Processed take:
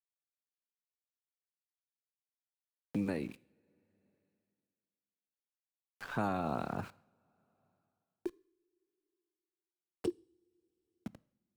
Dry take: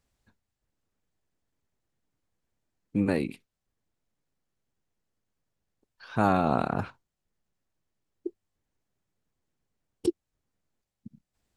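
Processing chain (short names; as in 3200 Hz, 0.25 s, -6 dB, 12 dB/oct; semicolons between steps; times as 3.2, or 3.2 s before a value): sample gate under -46 dBFS; two-slope reverb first 0.46 s, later 2 s, from -26 dB, DRR 18 dB; three-band squash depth 70%; gain -7.5 dB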